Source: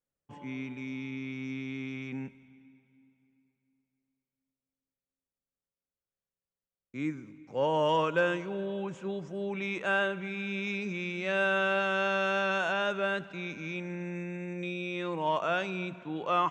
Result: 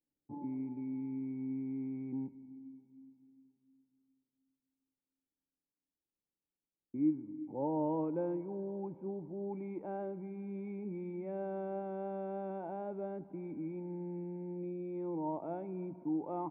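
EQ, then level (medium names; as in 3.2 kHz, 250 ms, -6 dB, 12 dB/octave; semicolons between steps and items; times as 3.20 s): dynamic bell 1 kHz, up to -5 dB, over -44 dBFS, Q 3.8; dynamic bell 270 Hz, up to -7 dB, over -46 dBFS, Q 0.78; cascade formant filter u; +10.5 dB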